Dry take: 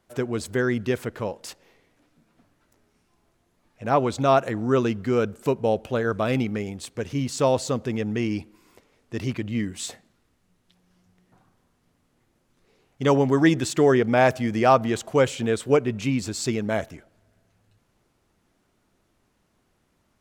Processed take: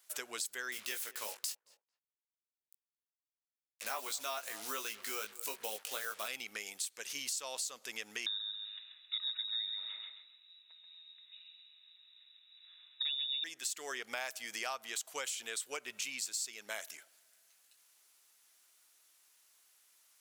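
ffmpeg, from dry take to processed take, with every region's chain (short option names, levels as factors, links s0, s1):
-filter_complex "[0:a]asettb=1/sr,asplit=3[s0][s1][s2];[s0]atrim=end=0.724[s3];[s1]atrim=start=0.72:end=6.28,asetpts=PTS-STARTPTS,afade=t=in:d=0.004:c=qsin,afade=t=out:st=5.556:d=0.004:c=qsin,acrusher=bits=6:mix=0:aa=0.5,asplit=2[s4][s5];[s5]adelay=19,volume=0.562[s6];[s4][s6]amix=inputs=2:normalize=0,atrim=end_sample=245196,asplit=2[s7][s8];[s8]adelay=223,lowpass=f=1000:p=1,volume=0.0944,asplit=2[s9][s10];[s10]adelay=223,lowpass=f=1000:p=1,volume=0.27[s11];[s7][s9][s11]amix=inputs=3:normalize=0,atrim=end_sample=245196[s12];[s2]atrim=start=6.276[s13];[s3][s12]acrossfade=d=0.004:c1=hsin:c2=qsin[s14];[s14][s13]acrossfade=d=0.004:c1=qsin:c2=hsin,asettb=1/sr,asplit=3[s15][s16][s17];[s15]atrim=end=8.264[s18];[s16]atrim=start=8.26:end=13.44,asetpts=PTS-STARTPTS,afade=t=in:d=0.004:c=qsin,afade=t=out:st=5.176:d=0.004:c=qsin,asuperstop=centerf=680:order=8:qfactor=1.4,aecho=1:1:134|268|402|536:0.422|0.131|0.0405|0.0126,atrim=end_sample=228438,lowpass=f=3300:t=q:w=0.5098,lowpass=f=3300:t=q:w=0.6013,lowpass=f=3300:t=q:w=0.9,lowpass=f=3300:t=q:w=2.563,afreqshift=-3900[s19];[s17]atrim=start=13.436[s20];[s18][s19]acrossfade=d=0.004:c1=hsin:c2=qsin[s21];[s21][s20]acrossfade=d=0.004:c1=qsin:c2=hsin,highpass=f=720:p=1,aderivative,acompressor=threshold=0.00398:ratio=6,volume=3.55"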